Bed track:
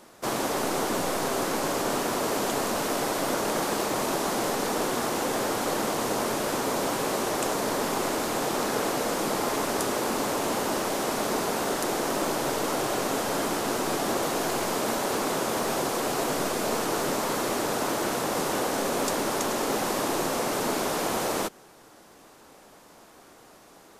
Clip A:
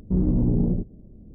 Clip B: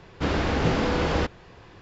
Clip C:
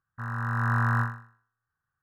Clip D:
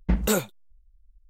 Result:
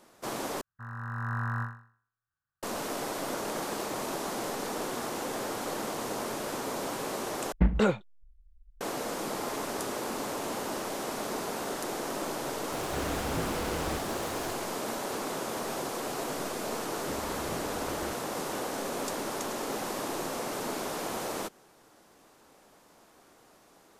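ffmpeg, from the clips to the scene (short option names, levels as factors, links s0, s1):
-filter_complex "[2:a]asplit=2[s0][s1];[0:a]volume=0.447[s2];[4:a]lowpass=2600[s3];[s0]aeval=exprs='val(0)+0.5*0.0596*sgn(val(0))':c=same[s4];[s2]asplit=3[s5][s6][s7];[s5]atrim=end=0.614[s8];[3:a]atrim=end=2.02,asetpts=PTS-STARTPTS,volume=0.422[s9];[s6]atrim=start=2.626:end=7.524[s10];[s3]atrim=end=1.29,asetpts=PTS-STARTPTS,volume=0.944[s11];[s7]atrim=start=8.806[s12];[s4]atrim=end=1.81,asetpts=PTS-STARTPTS,volume=0.211,afade=t=in:d=0.004:c=hsin,afade=t=out:st=1.806:d=0.004:c=hsin,adelay=12720[s13];[s1]atrim=end=1.81,asetpts=PTS-STARTPTS,volume=0.126,afade=t=in:d=0.004:c=hsin,afade=t=out:st=1.806:d=0.004:c=hsin,adelay=16870[s14];[s8][s9]acrossfade=d=0.004:c1=hsin:c2=hsin[s15];[s15][s10]acrossfade=d=0.004:c1=hsin:c2=hsin[s16];[s16][s11]acrossfade=d=0.004:c1=hsin:c2=hsin[s17];[s17][s12]acrossfade=d=0.004:c1=hsin:c2=hsin[s18];[s18][s13][s14]amix=inputs=3:normalize=0"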